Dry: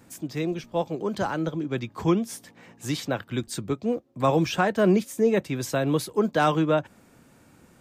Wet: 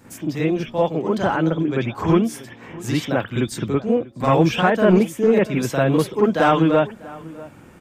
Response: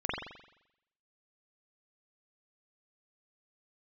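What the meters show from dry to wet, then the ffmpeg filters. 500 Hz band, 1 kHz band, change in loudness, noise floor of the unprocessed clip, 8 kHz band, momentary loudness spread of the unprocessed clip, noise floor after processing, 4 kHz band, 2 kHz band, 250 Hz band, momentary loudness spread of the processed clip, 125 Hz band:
+6.5 dB, +6.0 dB, +6.5 dB, −57 dBFS, +1.5 dB, 9 LU, −45 dBFS, +4.0 dB, +6.5 dB, +6.5 dB, 16 LU, +7.0 dB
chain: -filter_complex "[0:a]asplit=2[link_01][link_02];[link_02]acompressor=threshold=-30dB:ratio=6,volume=-1.5dB[link_03];[link_01][link_03]amix=inputs=2:normalize=0,volume=12.5dB,asoftclip=hard,volume=-12.5dB,asplit=2[link_04][link_05];[link_05]adelay=641.4,volume=-20dB,highshelf=frequency=4000:gain=-14.4[link_06];[link_04][link_06]amix=inputs=2:normalize=0[link_07];[1:a]atrim=start_sample=2205,atrim=end_sample=3528[link_08];[link_07][link_08]afir=irnorm=-1:irlink=0,volume=-1dB"

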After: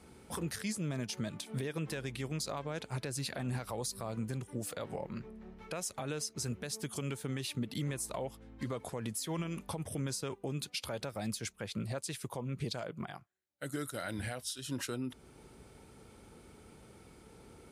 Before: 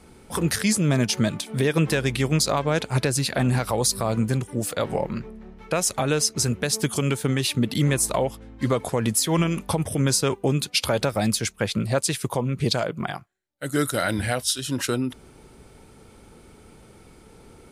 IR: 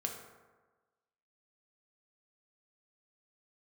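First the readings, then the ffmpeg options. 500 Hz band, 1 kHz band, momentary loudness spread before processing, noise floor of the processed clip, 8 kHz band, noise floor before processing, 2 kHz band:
−15.5 dB, −15.5 dB, 7 LU, −59 dBFS, −15.5 dB, −50 dBFS, −15.5 dB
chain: -af "highpass=43,alimiter=limit=-20.5dB:level=0:latency=1:release=473,volume=-6.5dB"

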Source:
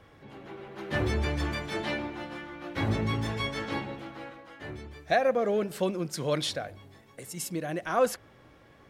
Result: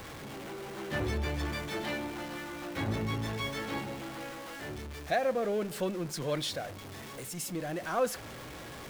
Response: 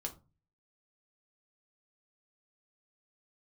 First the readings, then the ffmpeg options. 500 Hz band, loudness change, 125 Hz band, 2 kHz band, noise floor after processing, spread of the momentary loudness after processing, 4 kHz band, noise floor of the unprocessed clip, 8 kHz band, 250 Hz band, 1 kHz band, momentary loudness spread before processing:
−4.0 dB, −4.5 dB, −3.5 dB, −3.0 dB, −45 dBFS, 11 LU, −2.5 dB, −57 dBFS, −1.0 dB, −3.0 dB, −3.5 dB, 17 LU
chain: -af "aeval=exprs='val(0)+0.5*0.02*sgn(val(0))':channel_layout=same,bandreject=frequency=50:width_type=h:width=6,bandreject=frequency=100:width_type=h:width=6,volume=-5.5dB"

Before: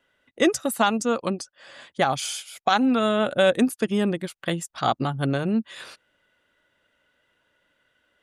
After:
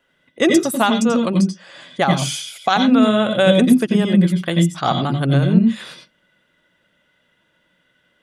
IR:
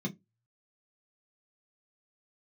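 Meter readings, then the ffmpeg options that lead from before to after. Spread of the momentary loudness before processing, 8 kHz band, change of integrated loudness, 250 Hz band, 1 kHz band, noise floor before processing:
11 LU, +4.5 dB, +7.5 dB, +9.5 dB, +4.0 dB, −71 dBFS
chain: -filter_complex "[0:a]asplit=2[link_01][link_02];[link_02]equalizer=frequency=4600:width=0.4:gain=10.5[link_03];[1:a]atrim=start_sample=2205,asetrate=41013,aresample=44100,adelay=87[link_04];[link_03][link_04]afir=irnorm=-1:irlink=0,volume=-10.5dB[link_05];[link_01][link_05]amix=inputs=2:normalize=0,volume=3.5dB"

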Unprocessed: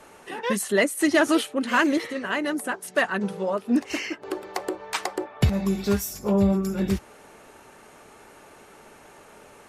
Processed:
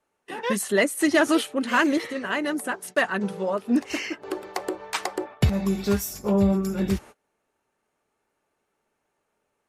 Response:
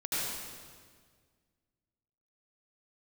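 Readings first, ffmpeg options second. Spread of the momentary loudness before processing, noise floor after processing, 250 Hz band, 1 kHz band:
11 LU, −77 dBFS, 0.0 dB, 0.0 dB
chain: -af "agate=range=-27dB:threshold=-40dB:ratio=16:detection=peak"

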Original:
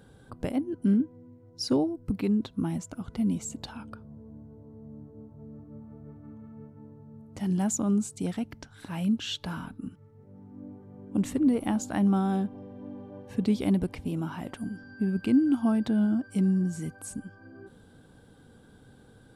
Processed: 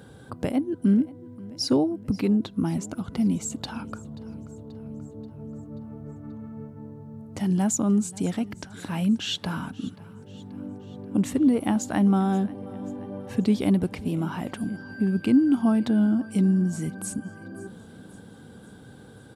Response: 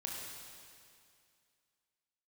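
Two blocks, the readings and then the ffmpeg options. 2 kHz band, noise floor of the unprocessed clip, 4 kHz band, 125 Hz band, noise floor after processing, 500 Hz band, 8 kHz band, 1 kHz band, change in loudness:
+4.5 dB, −55 dBFS, +5.0 dB, +4.0 dB, −47 dBFS, +4.0 dB, +4.5 dB, +4.0 dB, +3.5 dB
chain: -filter_complex "[0:a]highpass=75,asplit=2[link_01][link_02];[link_02]acompressor=threshold=-39dB:ratio=6,volume=-2dB[link_03];[link_01][link_03]amix=inputs=2:normalize=0,aecho=1:1:533|1066|1599|2132|2665:0.0891|0.0526|0.031|0.0183|0.0108,volume=2.5dB"

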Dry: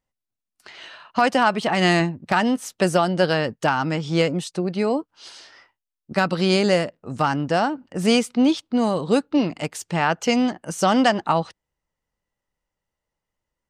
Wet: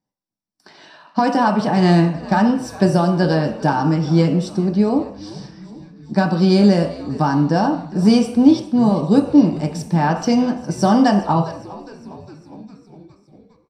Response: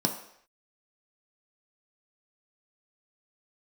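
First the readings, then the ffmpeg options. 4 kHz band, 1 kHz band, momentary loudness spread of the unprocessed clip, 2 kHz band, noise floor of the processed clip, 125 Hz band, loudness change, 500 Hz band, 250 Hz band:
−3.0 dB, +2.5 dB, 8 LU, −3.5 dB, −60 dBFS, +8.5 dB, +4.5 dB, +1.5 dB, +7.5 dB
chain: -filter_complex "[0:a]asplit=7[link_01][link_02][link_03][link_04][link_05][link_06][link_07];[link_02]adelay=408,afreqshift=-120,volume=-18dB[link_08];[link_03]adelay=816,afreqshift=-240,volume=-21.9dB[link_09];[link_04]adelay=1224,afreqshift=-360,volume=-25.8dB[link_10];[link_05]adelay=1632,afreqshift=-480,volume=-29.6dB[link_11];[link_06]adelay=2040,afreqshift=-600,volume=-33.5dB[link_12];[link_07]adelay=2448,afreqshift=-720,volume=-37.4dB[link_13];[link_01][link_08][link_09][link_10][link_11][link_12][link_13]amix=inputs=7:normalize=0[link_14];[1:a]atrim=start_sample=2205,afade=type=out:start_time=0.31:duration=0.01,atrim=end_sample=14112[link_15];[link_14][link_15]afir=irnorm=-1:irlink=0,volume=-9.5dB"

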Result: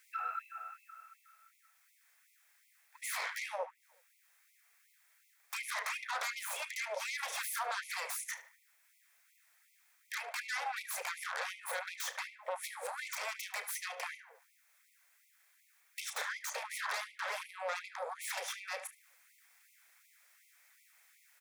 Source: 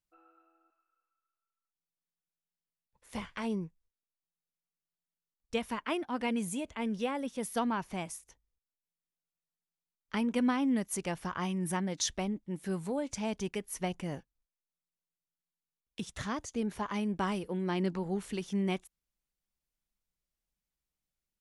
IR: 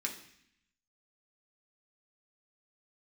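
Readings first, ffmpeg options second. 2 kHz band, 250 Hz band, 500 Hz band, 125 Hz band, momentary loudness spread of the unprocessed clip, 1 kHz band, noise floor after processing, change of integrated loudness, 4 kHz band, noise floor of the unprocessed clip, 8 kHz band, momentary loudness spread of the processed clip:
+5.0 dB, below −40 dB, −8.5 dB, below −40 dB, 8 LU, −2.0 dB, −71 dBFS, −4.5 dB, +0.5 dB, below −85 dBFS, 0.0 dB, 7 LU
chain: -filter_complex "[0:a]bandreject=frequency=50:width_type=h:width=6,bandreject=frequency=100:width_type=h:width=6,bandreject=frequency=150:width_type=h:width=6,bandreject=frequency=200:width_type=h:width=6,bandreject=frequency=250:width_type=h:width=6,acrossover=split=130[link_01][link_02];[link_02]acompressor=threshold=-42dB:ratio=10[link_03];[link_01][link_03]amix=inputs=2:normalize=0,equalizer=frequency=125:width_type=o:width=1:gain=11,equalizer=frequency=250:width_type=o:width=1:gain=-12,equalizer=frequency=500:width_type=o:width=1:gain=-11,equalizer=frequency=1000:width_type=o:width=1:gain=-10,equalizer=frequency=2000:width_type=o:width=1:gain=8,equalizer=frequency=4000:width_type=o:width=1:gain=-6,acompressor=threshold=-54dB:ratio=6,asplit=2[link_04][link_05];[link_05]adelay=33,volume=-12.5dB[link_06];[link_04][link_06]amix=inputs=2:normalize=0,aeval=exprs='0.0133*sin(PI/2*10*val(0)/0.0133)':channel_layout=same,equalizer=frequency=1000:width_type=o:width=2:gain=9,bandreject=frequency=2900:width=9.6,asplit=2[link_07][link_08];[link_08]adelay=74,lowpass=frequency=2600:poles=1,volume=-10dB,asplit=2[link_09][link_10];[link_10]adelay=74,lowpass=frequency=2600:poles=1,volume=0.49,asplit=2[link_11][link_12];[link_12]adelay=74,lowpass=frequency=2600:poles=1,volume=0.49,asplit=2[link_13][link_14];[link_14]adelay=74,lowpass=frequency=2600:poles=1,volume=0.49,asplit=2[link_15][link_16];[link_16]adelay=74,lowpass=frequency=2600:poles=1,volume=0.49[link_17];[link_07][link_09][link_11][link_13][link_15][link_17]amix=inputs=6:normalize=0,afftfilt=real='re*gte(b*sr/1024,420*pow(2000/420,0.5+0.5*sin(2*PI*2.7*pts/sr)))':imag='im*gte(b*sr/1024,420*pow(2000/420,0.5+0.5*sin(2*PI*2.7*pts/sr)))':win_size=1024:overlap=0.75,volume=1dB"

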